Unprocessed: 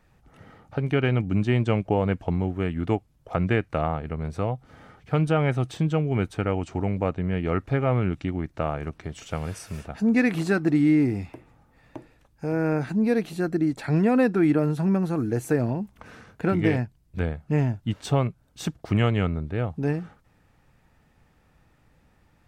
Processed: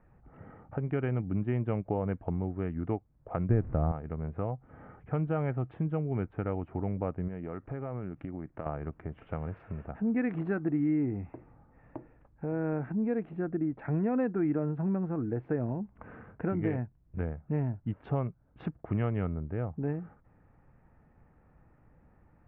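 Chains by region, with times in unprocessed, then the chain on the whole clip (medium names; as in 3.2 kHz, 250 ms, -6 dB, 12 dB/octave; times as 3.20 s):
3.49–3.92 s: one-bit delta coder 64 kbps, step -36 dBFS + tilt EQ -3.5 dB/octave
7.28–8.66 s: peaking EQ 63 Hz -8.5 dB 1.2 oct + compression 4:1, threshold -30 dBFS
whole clip: local Wiener filter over 9 samples; Bessel low-pass 1.5 kHz, order 6; compression 1.5:1, threshold -41 dBFS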